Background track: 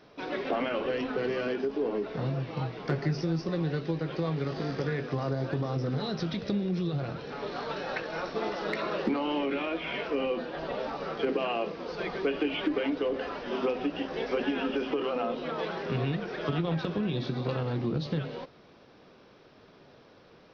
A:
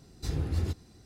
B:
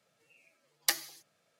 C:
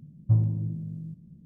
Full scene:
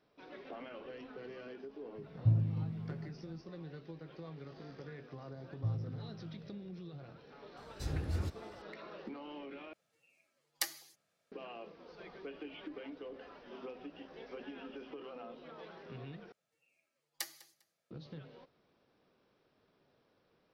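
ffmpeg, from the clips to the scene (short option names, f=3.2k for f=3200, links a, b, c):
-filter_complex "[3:a]asplit=2[a][b];[2:a]asplit=2[c][d];[0:a]volume=-17.5dB[e];[d]aecho=1:1:200|400:0.0944|0.0227[f];[e]asplit=3[g][h][i];[g]atrim=end=9.734[j];[c]atrim=end=1.59,asetpts=PTS-STARTPTS,volume=-7dB[k];[h]atrim=start=11.316:end=16.324[l];[f]atrim=end=1.59,asetpts=PTS-STARTPTS,volume=-12.5dB[m];[i]atrim=start=17.906[n];[a]atrim=end=1.45,asetpts=PTS-STARTPTS,volume=-6.5dB,afade=t=in:d=0.004:c=hsin,afade=t=out:st=1.446:d=0.004:c=hsin,adelay=1960[o];[b]atrim=end=1.45,asetpts=PTS-STARTPTS,volume=-14dB,afade=t=in:d=0.004:c=hsin,afade=t=out:st=1.446:d=0.004:c=hsin,adelay=5340[p];[1:a]atrim=end=1.05,asetpts=PTS-STARTPTS,volume=-6dB,afade=t=in:d=0.004:c=hsin,afade=t=out:st=1.046:d=0.004:c=hsin,adelay=7570[q];[j][k]acrossfade=d=0.004:c1=hsin:c2=hsin[r];[r][l]acrossfade=d=0.004:c1=hsin:c2=hsin[s];[s][m]acrossfade=d=0.004:c1=hsin:c2=hsin[t];[t][n]acrossfade=d=0.004:c1=hsin:c2=hsin[u];[u][o][p][q]amix=inputs=4:normalize=0"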